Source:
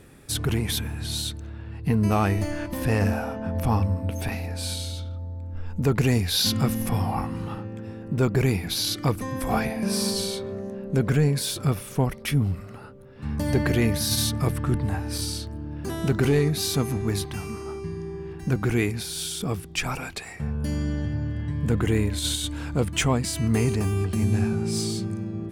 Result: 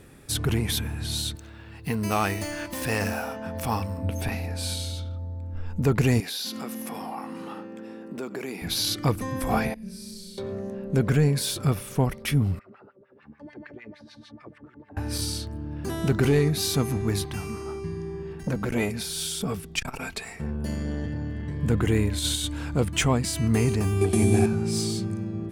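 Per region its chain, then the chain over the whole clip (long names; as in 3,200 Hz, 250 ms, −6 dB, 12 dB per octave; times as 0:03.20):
0:01.35–0:03.98: running median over 3 samples + spectral tilt +2.5 dB per octave
0:06.20–0:08.62: high-pass filter 230 Hz 24 dB per octave + downward compressor 3 to 1, threshold −32 dBFS + single-tap delay 81 ms −19.5 dB
0:09.74–0:10.38: guitar amp tone stack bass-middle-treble 10-0-1 + comb filter 4.6 ms, depth 82% + flutter between parallel walls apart 5.6 metres, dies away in 0.88 s
0:12.59–0:14.97: low-pass filter 6,200 Hz + downward compressor 3 to 1, threshold −35 dBFS + auto-filter band-pass sine 6.7 Hz 250–2,300 Hz
0:18.22–0:21.62: comb filter 4.5 ms, depth 41% + saturating transformer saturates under 400 Hz
0:24.01–0:24.46: variable-slope delta modulation 64 kbit/s + parametric band 9,300 Hz +13 dB 0.63 octaves + hollow resonant body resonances 370/710/2,300/3,400 Hz, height 11 dB, ringing for 20 ms
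whole clip: no processing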